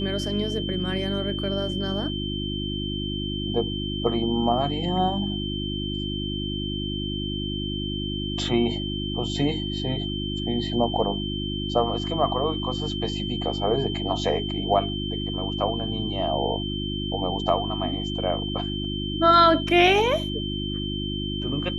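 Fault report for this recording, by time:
mains hum 50 Hz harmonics 7 −30 dBFS
whistle 3,100 Hz −32 dBFS

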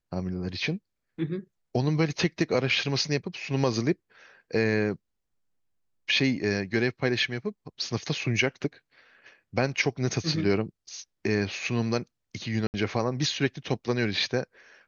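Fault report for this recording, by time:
0:12.67–0:12.74: drop-out 69 ms

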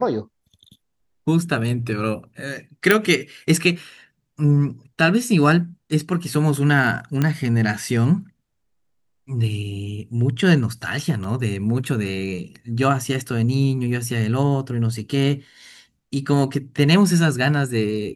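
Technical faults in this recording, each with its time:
0:02.91: click −1 dBFS
0:07.22: click −8 dBFS
0:11.24: drop-out 3 ms

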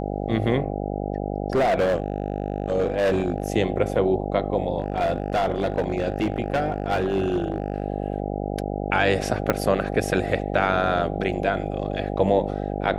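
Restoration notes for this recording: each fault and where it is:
mains buzz 50 Hz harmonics 16 −28 dBFS
0:01.55–0:03.50: clipping −17 dBFS
0:04.80–0:07.84: clipping −17.5 dBFS
0:09.50: click −7 dBFS

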